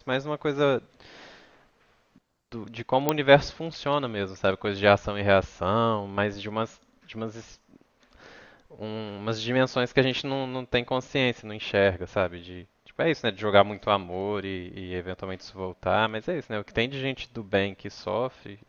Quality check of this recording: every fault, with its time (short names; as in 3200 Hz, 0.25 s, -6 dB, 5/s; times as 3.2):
3.09 pop -7 dBFS